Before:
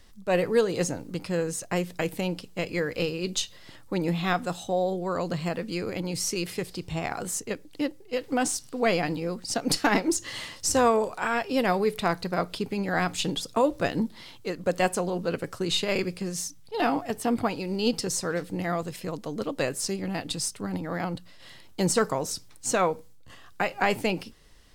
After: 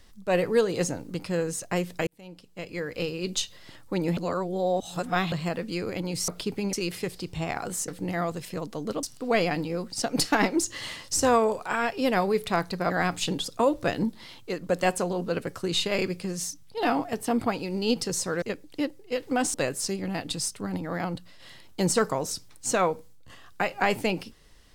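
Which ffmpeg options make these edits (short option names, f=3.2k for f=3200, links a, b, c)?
-filter_complex "[0:a]asplit=11[a][b][c][d][e][f][g][h][i][j][k];[a]atrim=end=2.07,asetpts=PTS-STARTPTS,afade=t=out:st=2.066:d=0.004:c=hsin[l];[b]atrim=start=2.07:end=4.172,asetpts=PTS-STARTPTS,afade=t=in:d=1.27[m];[c]atrim=start=4.168:end=5.322,asetpts=PTS-STARTPTS,areverse[n];[d]atrim=start=5.318:end=6.282[o];[e]atrim=start=12.418:end=12.872[p];[f]atrim=start=6.278:end=7.432[q];[g]atrim=start=18.388:end=19.542[r];[h]atrim=start=8.548:end=12.422[s];[i]atrim=start=12.868:end=18.392[t];[j]atrim=start=7.428:end=8.552[u];[k]atrim=start=19.538[v];[l][m]concat=n=2:v=0:a=1[w];[w][n]acrossfade=d=0.004:c1=hsin:c2=hsin[x];[x][o]acrossfade=d=0.004:c1=hsin:c2=hsin[y];[y][p]acrossfade=d=0.004:c1=hsin:c2=hsin[z];[z][q]acrossfade=d=0.004:c1=hsin:c2=hsin[aa];[aa][r]acrossfade=d=0.004:c1=hsin:c2=hsin[ab];[ab][s]acrossfade=d=0.004:c1=hsin:c2=hsin[ac];[ac][t]acrossfade=d=0.004:c1=hsin:c2=hsin[ad];[ad][u]acrossfade=d=0.004:c1=hsin:c2=hsin[ae];[ae][v]acrossfade=d=0.004:c1=hsin:c2=hsin"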